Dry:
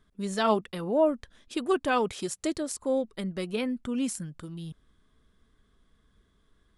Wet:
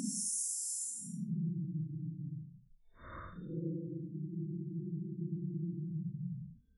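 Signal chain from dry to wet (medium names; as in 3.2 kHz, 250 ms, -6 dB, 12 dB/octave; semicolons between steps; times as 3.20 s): spectral gate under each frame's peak -15 dB strong; Paulstretch 10×, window 0.05 s, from 4.08 s; trim -1.5 dB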